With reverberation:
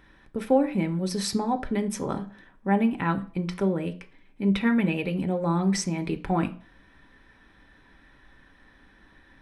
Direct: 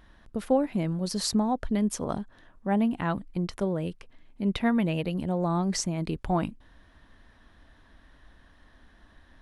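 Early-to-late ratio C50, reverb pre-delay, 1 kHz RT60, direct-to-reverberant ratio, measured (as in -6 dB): 16.5 dB, 3 ms, 0.40 s, 5.0 dB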